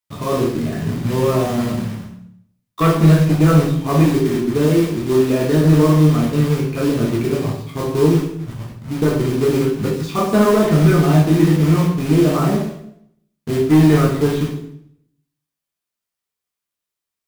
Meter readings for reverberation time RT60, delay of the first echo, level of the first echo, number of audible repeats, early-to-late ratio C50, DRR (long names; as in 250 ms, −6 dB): 0.70 s, no echo audible, no echo audible, no echo audible, 4.5 dB, −2.5 dB